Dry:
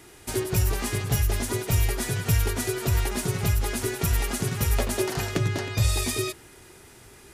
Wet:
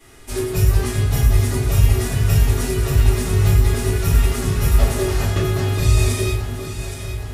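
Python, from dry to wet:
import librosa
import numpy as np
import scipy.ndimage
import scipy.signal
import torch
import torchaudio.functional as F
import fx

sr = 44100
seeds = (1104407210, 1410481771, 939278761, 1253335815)

y = fx.echo_alternate(x, sr, ms=409, hz=1400.0, feedback_pct=77, wet_db=-7.0)
y = fx.room_shoebox(y, sr, seeds[0], volume_m3=55.0, walls='mixed', distance_m=2.6)
y = y * 10.0 ** (-9.0 / 20.0)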